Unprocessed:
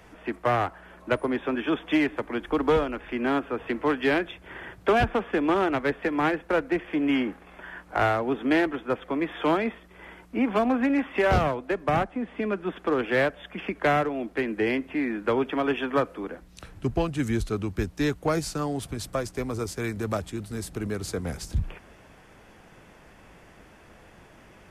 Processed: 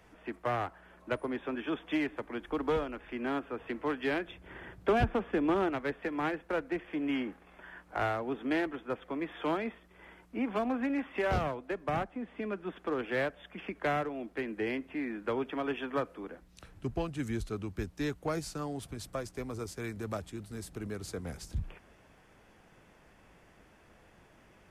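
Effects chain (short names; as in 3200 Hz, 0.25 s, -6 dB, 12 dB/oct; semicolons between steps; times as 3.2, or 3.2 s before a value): 4.28–5.7 low shelf 420 Hz +6.5 dB; gain -8.5 dB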